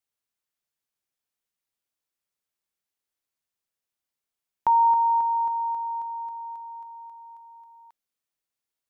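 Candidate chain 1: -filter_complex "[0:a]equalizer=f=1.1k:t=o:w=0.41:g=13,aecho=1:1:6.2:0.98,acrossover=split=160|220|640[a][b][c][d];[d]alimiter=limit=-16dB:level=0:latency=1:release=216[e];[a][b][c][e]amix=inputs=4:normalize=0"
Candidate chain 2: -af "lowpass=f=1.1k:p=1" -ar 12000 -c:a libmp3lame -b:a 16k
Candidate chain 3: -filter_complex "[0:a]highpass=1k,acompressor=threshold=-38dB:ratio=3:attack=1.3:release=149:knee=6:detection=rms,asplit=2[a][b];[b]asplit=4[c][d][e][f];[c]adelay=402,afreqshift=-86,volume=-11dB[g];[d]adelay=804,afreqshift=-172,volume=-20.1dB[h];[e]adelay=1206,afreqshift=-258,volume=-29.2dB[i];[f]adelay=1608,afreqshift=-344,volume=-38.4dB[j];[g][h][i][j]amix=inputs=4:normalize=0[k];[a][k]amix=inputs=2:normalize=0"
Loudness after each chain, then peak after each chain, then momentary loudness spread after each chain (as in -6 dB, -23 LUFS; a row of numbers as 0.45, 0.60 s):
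-20.0, -26.5, -38.5 LUFS; -11.0, -17.0, -28.0 dBFS; 20, 21, 17 LU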